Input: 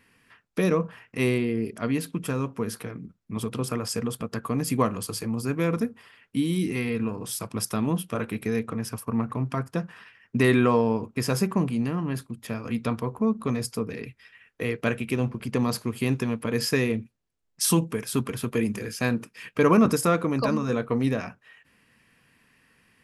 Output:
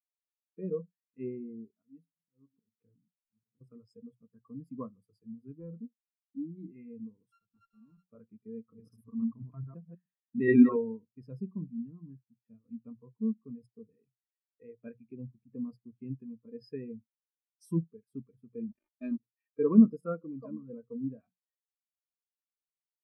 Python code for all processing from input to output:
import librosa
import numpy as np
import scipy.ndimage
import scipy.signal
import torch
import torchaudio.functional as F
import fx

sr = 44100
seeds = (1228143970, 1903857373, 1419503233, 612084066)

y = fx.chain(x, sr, fx.auto_swell(attack_ms=288.0),
    fx.doubler(ms=18.0, db=-13.5),
    fx.pre_swell(db_per_s=150.0), at=(1.76, 3.61))
y = fx.chain(y, sr, fx.overload_stage(gain_db=21.5),
    fx.high_shelf(hz=2600.0, db=-8.5), at=(5.59, 6.58))
y = fx.chain(y, sr, fx.sample_sort(block=32),
    fx.high_shelf(hz=3200.0, db=3.0),
    fx.tube_stage(drive_db=29.0, bias=0.6), at=(7.32, 8.09))
y = fx.chain(y, sr, fx.reverse_delay(ms=105, wet_db=-0.5),
    fx.high_shelf(hz=3000.0, db=7.0), at=(8.59, 10.76))
y = fx.chain(y, sr, fx.sample_gate(floor_db=-26.5),
    fx.comb(ms=3.3, depth=0.93), at=(18.71, 19.2))
y = fx.hum_notches(y, sr, base_hz=60, count=3)
y = fx.spectral_expand(y, sr, expansion=2.5)
y = y * librosa.db_to_amplitude(-3.0)